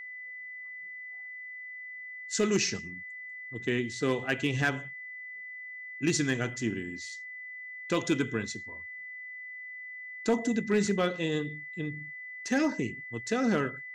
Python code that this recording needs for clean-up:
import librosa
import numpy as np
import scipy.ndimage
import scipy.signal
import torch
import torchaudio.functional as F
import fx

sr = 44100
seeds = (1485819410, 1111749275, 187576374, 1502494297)

y = fx.fix_declip(x, sr, threshold_db=-18.0)
y = fx.notch(y, sr, hz=2000.0, q=30.0)